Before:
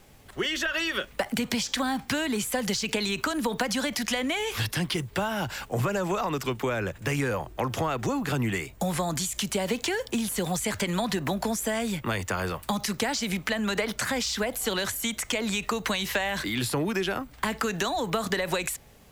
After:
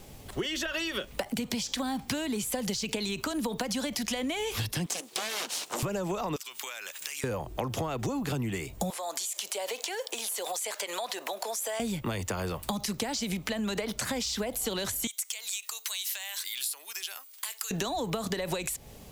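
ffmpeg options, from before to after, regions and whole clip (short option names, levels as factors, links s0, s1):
-filter_complex "[0:a]asettb=1/sr,asplit=3[s0][s1][s2];[s0]atrim=end=4.864[s3];[s1]atrim=start=4.86:end=5.83,asetpts=PTS-STARTPTS,afade=t=in:d=0.004:c=qsin,afade=t=out:st=0.966:d=0.004:c=qsin,aeval=exprs='abs(val(0))':c=same,highpass=230,lowpass=6800,aemphasis=mode=production:type=riaa[s4];[s2]atrim=start=5.826[s5];[s3][s4]acrossfade=d=0.004:c1=hsin:c2=qsin[s6];[s6][s5]acrossfade=d=0.004:c1=qsin:c2=hsin,asettb=1/sr,asplit=3[s7][s8][s9];[s7]atrim=end=6.364[s10];[s8]atrim=start=6.36:end=7.24,asetpts=PTS-STARTPTS,afade=t=in:d=0.004:c=qsin,afade=t=out:st=0.876:d=0.004:c=qsin,highpass=1200,highshelf=f=2100:g=12,acompressor=threshold=0.0141:ratio=16:attack=3.2:release=140:knee=1:detection=peak[s11];[s9]atrim=start=7.236[s12];[s10][s11]acrossfade=d=0.004:c1=hsin:c2=qsin[s13];[s13][s12]acrossfade=d=0.004:c1=qsin:c2=hsin,asettb=1/sr,asplit=3[s14][s15][s16];[s14]atrim=end=8.904[s17];[s15]atrim=start=8.9:end=11.8,asetpts=PTS-STARTPTS,afade=t=in:d=0.004:c=qsin,afade=t=out:st=2.896:d=0.004:c=qsin,highpass=f=500:w=0.5412,highpass=f=500:w=1.3066,acompressor=threshold=0.02:ratio=2.5:attack=3.2:release=140:knee=1:detection=peak[s18];[s16]atrim=start=11.796[s19];[s17][s18]acrossfade=d=0.004:c1=hsin:c2=qsin[s20];[s20][s19]acrossfade=d=0.004:c1=qsin:c2=hsin,asettb=1/sr,asplit=3[s21][s22][s23];[s21]atrim=end=15.074[s24];[s22]atrim=start=15.07:end=17.71,asetpts=PTS-STARTPTS,afade=t=in:d=0.004:c=qsin,afade=t=out:st=2.636:d=0.004:c=qsin,highpass=770,aderivative[s25];[s23]atrim=start=17.706[s26];[s24][s25]acrossfade=d=0.004:c1=hsin:c2=qsin[s27];[s27][s26]acrossfade=d=0.004:c1=qsin:c2=hsin,equalizer=f=1600:w=1.1:g=-7,acompressor=threshold=0.0141:ratio=4,volume=2.11"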